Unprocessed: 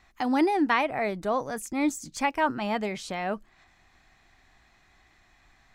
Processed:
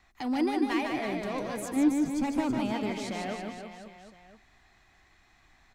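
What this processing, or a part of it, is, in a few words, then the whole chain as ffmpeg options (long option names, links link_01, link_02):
one-band saturation: -filter_complex "[0:a]asettb=1/sr,asplit=3[link_01][link_02][link_03];[link_01]atrim=end=1.764[link_04];[link_02]atrim=start=1.76:end=2.6,asetpts=PTS-STARTPTS,afade=type=in:duration=0.004:curve=qsin,afade=type=out:start_time=0.836:duration=0.004:curve=qsin,tiltshelf=frequency=1100:gain=8[link_05];[link_03]atrim=start=2.596[link_06];[link_04][link_05]acrossfade=duration=0.004:curve1=hsin:curve2=qsin[link_07];[link_07][link_06]acrossfade=duration=0.004:curve1=qsin:curve2=hsin,acrossover=split=370|2300[link_08][link_09][link_10];[link_09]asoftclip=type=tanh:threshold=-32dB[link_11];[link_08][link_11][link_10]amix=inputs=3:normalize=0,aecho=1:1:150|322.5|520.9|749|1011:0.631|0.398|0.251|0.158|0.1,volume=-3dB"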